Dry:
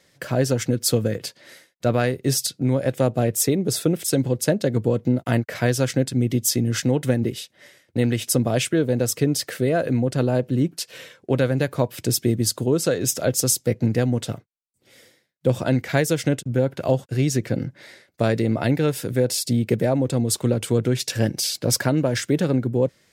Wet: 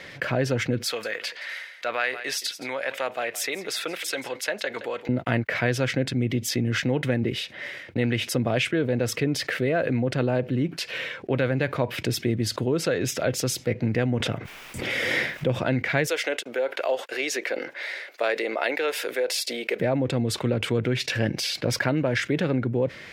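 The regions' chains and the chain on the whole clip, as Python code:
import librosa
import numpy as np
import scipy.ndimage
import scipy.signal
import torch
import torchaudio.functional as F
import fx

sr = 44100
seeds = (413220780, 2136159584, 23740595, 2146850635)

y = fx.chain(x, sr, fx.highpass(hz=940.0, slope=12),
    fx.echo_single(ms=170, db=-22.0), at=(0.86, 5.09))
y = fx.chain(y, sr, fx.peak_eq(hz=4200.0, db=-6.0, octaves=0.24),
    fx.pre_swell(db_per_s=30.0), at=(13.96, 15.56))
y = fx.chain(y, sr, fx.highpass(hz=430.0, slope=24),
    fx.high_shelf(hz=4900.0, db=6.5), at=(16.07, 19.8))
y = fx.curve_eq(y, sr, hz=(180.0, 1200.0, 2300.0, 8100.0), db=(0, 4, 9, -12))
y = fx.env_flatten(y, sr, amount_pct=50)
y = y * 10.0 ** (-7.5 / 20.0)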